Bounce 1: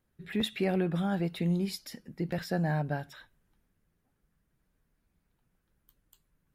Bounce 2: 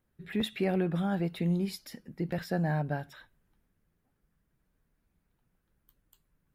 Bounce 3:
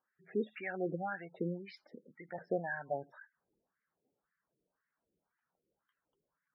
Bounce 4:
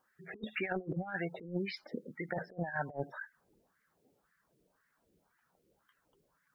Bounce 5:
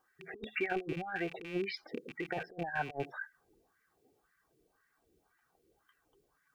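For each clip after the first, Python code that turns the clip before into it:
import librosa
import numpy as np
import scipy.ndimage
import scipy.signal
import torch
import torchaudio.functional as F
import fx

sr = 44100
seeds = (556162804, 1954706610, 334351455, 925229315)

y1 = fx.peak_eq(x, sr, hz=6200.0, db=-3.5, octaves=2.0)
y2 = fx.wah_lfo(y1, sr, hz=1.9, low_hz=410.0, high_hz=1800.0, q=2.4)
y2 = fx.spec_gate(y2, sr, threshold_db=-15, keep='strong')
y2 = fx.quant_float(y2, sr, bits=8)
y2 = F.gain(torch.from_numpy(y2), 3.5).numpy()
y3 = fx.over_compress(y2, sr, threshold_db=-43.0, ratio=-0.5)
y3 = fx.low_shelf(y3, sr, hz=120.0, db=5.0)
y3 = F.gain(torch.from_numpy(y3), 5.5).numpy()
y4 = fx.rattle_buzz(y3, sr, strikes_db=-50.0, level_db=-36.0)
y4 = y4 + 0.52 * np.pad(y4, (int(2.6 * sr / 1000.0), 0))[:len(y4)]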